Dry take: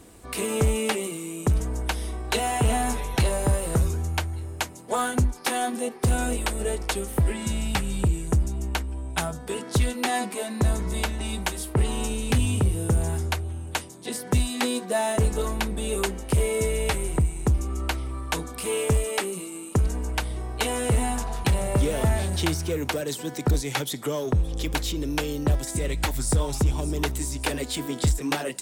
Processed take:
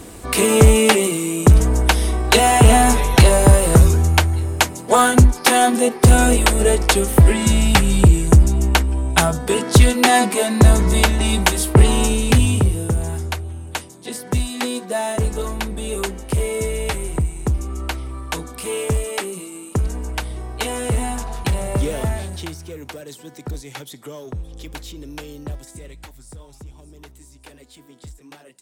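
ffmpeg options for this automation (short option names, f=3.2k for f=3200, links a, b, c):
-af "volume=12dB,afade=t=out:st=11.81:d=1.14:silence=0.316228,afade=t=out:st=21.9:d=0.61:silence=0.354813,afade=t=out:st=25.4:d=0.78:silence=0.316228"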